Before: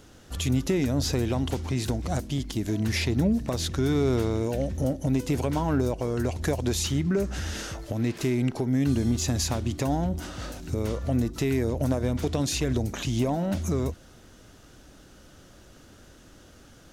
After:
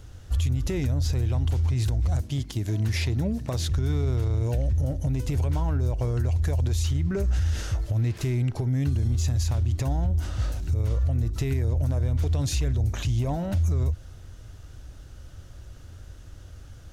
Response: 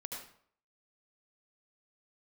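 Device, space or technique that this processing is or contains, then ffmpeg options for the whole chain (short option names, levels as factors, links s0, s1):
car stereo with a boomy subwoofer: -filter_complex "[0:a]asettb=1/sr,asplit=3[s0][s1][s2];[s0]atrim=end=2.214[s3];[s1]atrim=start=2.21:end=3.7,asetpts=PTS-STARTPTS,afade=t=in:d=0.004:c=qsin,afade=t=out:st=1.486:d=0.004:c=qsin,highpass=130[s4];[s2]atrim=start=3.696[s5];[s3][s4]acrossfade=d=0.004:c1=hsin:c2=qsin[s6];[s6][s5]acrossfade=d=0.004:c1=qsin:c2=hsin,lowshelf=f=140:t=q:w=1.5:g=13,alimiter=limit=0.168:level=0:latency=1:release=76,volume=0.794"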